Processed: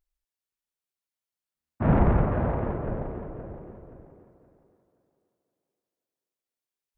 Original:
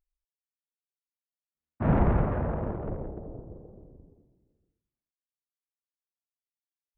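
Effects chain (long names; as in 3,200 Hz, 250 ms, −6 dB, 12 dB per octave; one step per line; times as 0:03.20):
on a send: feedback echo with a high-pass in the loop 523 ms, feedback 31%, high-pass 170 Hz, level −9.5 dB
on the sum: level +2.5 dB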